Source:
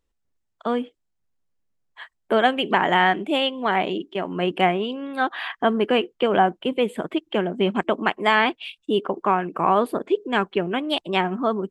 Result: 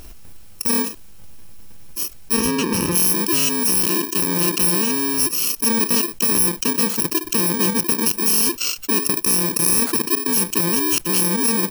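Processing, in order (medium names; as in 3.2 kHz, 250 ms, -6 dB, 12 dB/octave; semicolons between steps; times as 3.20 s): bit-reversed sample order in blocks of 64 samples; 2.35–2.94 s: low-pass 2.7 kHz -> 1.5 kHz 6 dB/octave; level flattener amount 70%; trim -1.5 dB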